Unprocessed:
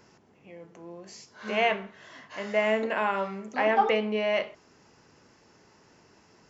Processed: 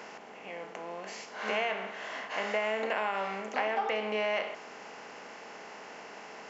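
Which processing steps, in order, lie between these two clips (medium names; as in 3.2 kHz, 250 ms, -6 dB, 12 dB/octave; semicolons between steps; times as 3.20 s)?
spectral levelling over time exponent 0.6; bass shelf 260 Hz -12 dB; compression 6:1, threshold -25 dBFS, peak gain reduction 8.5 dB; trim -2 dB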